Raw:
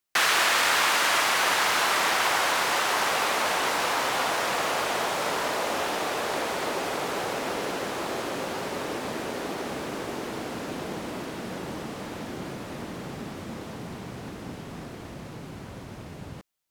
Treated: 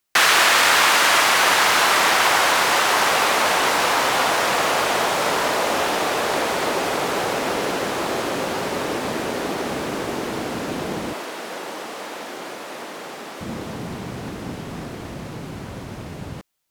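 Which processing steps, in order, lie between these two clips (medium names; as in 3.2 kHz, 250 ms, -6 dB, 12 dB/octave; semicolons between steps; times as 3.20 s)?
11.13–13.41 s: high-pass 470 Hz 12 dB/octave; trim +7 dB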